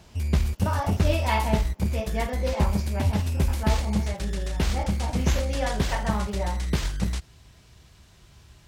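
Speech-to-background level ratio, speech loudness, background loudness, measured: -4.5 dB, -32.0 LUFS, -27.5 LUFS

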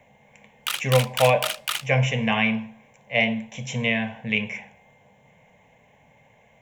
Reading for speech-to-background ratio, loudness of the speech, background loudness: 4.5 dB, -23.5 LUFS, -28.0 LUFS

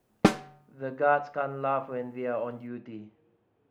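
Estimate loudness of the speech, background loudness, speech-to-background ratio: -31.0 LUFS, -26.0 LUFS, -5.0 dB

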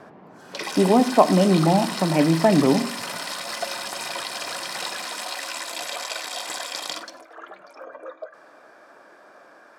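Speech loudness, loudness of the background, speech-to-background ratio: -19.0 LUFS, -30.0 LUFS, 11.0 dB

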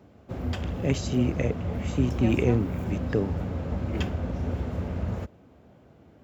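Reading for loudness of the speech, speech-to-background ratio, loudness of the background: -28.5 LUFS, 3.0 dB, -31.5 LUFS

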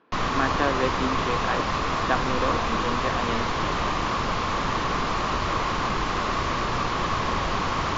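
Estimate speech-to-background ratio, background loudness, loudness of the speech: -4.5 dB, -25.5 LUFS, -30.0 LUFS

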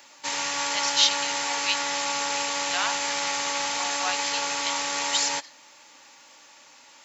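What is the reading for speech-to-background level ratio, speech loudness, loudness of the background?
-2.0 dB, -28.0 LUFS, -26.0 LUFS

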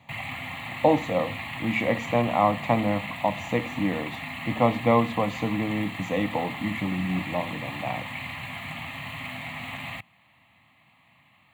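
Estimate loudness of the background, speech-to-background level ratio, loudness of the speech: -34.5 LUFS, 7.5 dB, -27.0 LUFS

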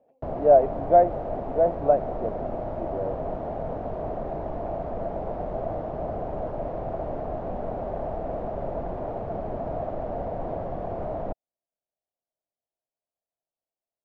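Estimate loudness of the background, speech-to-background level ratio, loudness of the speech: -32.5 LUFS, 10.0 dB, -22.5 LUFS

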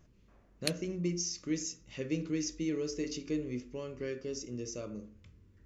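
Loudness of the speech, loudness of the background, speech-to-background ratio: -37.0 LUFS, -39.0 LUFS, 2.0 dB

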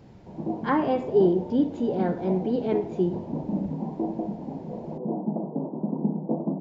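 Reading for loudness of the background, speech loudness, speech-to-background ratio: -32.0 LUFS, -25.5 LUFS, 6.5 dB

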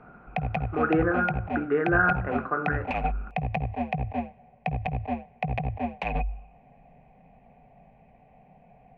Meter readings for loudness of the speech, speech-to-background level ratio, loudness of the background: -26.5 LUFS, 5.0 dB, -31.5 LUFS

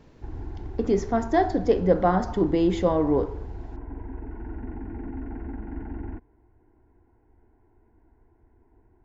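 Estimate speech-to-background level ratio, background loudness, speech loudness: 15.0 dB, -38.5 LUFS, -23.5 LUFS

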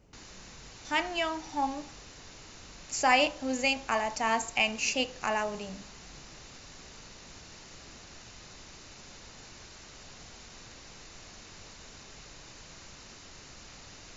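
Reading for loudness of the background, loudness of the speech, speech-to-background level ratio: -48.5 LUFS, -29.0 LUFS, 19.5 dB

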